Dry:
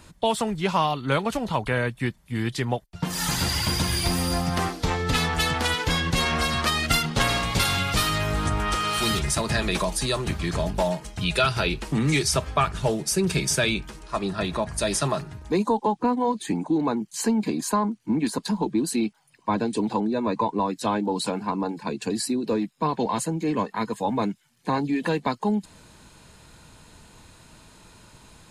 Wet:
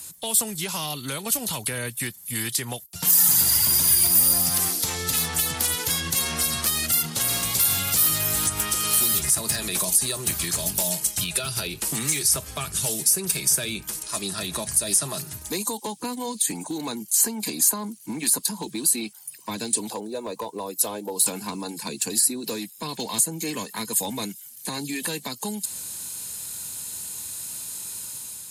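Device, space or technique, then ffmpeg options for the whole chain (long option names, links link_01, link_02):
FM broadcast chain: -filter_complex "[0:a]asettb=1/sr,asplit=3[link_01][link_02][link_03];[link_01]atrim=end=19.904[link_04];[link_02]atrim=start=19.9:end=21.26,asetpts=PTS-STARTPTS,afade=type=in:duration=0.004:curve=qsin,afade=type=out:start_time=1.356:duration=0.004:curve=qsin,equalizer=frequency=125:width_type=o:width=1:gain=-8,equalizer=frequency=250:width_type=o:width=1:gain=-8,equalizer=frequency=500:width_type=o:width=1:gain=6,equalizer=frequency=2000:width_type=o:width=1:gain=-9,equalizer=frequency=4000:width_type=o:width=1:gain=-7,equalizer=frequency=8000:width_type=o:width=1:gain=-7[link_05];[link_03]atrim=start=21.256[link_06];[link_04][link_05]acrossfade=duration=0.004:curve1=hsin:curve2=qsin[link_07];[link_07][link_06]acrossfade=duration=0.004:curve1=qsin:curve2=hsin,highpass=frequency=68:width=0.5412,highpass=frequency=68:width=1.3066,dynaudnorm=framelen=220:gausssize=5:maxgain=4.5dB,acrossover=split=540|1900[link_08][link_09][link_10];[link_08]acompressor=threshold=-25dB:ratio=4[link_11];[link_09]acompressor=threshold=-32dB:ratio=4[link_12];[link_10]acompressor=threshold=-35dB:ratio=4[link_13];[link_11][link_12][link_13]amix=inputs=3:normalize=0,aemphasis=mode=production:type=75fm,alimiter=limit=-15dB:level=0:latency=1:release=123,asoftclip=type=hard:threshold=-18.5dB,lowpass=frequency=15000:width=0.5412,lowpass=frequency=15000:width=1.3066,aemphasis=mode=production:type=75fm,volume=-4.5dB"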